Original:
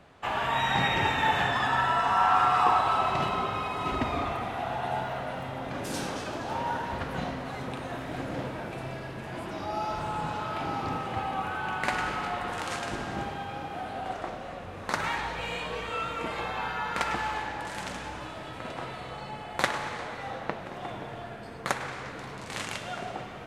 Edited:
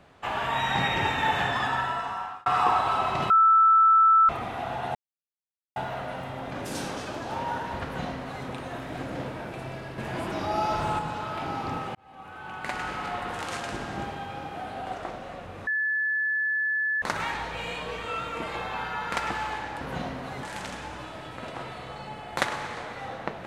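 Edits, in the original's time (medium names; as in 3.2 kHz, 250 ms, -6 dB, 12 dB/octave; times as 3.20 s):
1.62–2.46 s: fade out
3.30–4.29 s: bleep 1.32 kHz -14.5 dBFS
4.95 s: insert silence 0.81 s
7.03–7.65 s: copy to 17.65 s
9.17–10.18 s: gain +5 dB
11.14–12.34 s: fade in
14.86 s: add tone 1.73 kHz -23.5 dBFS 1.35 s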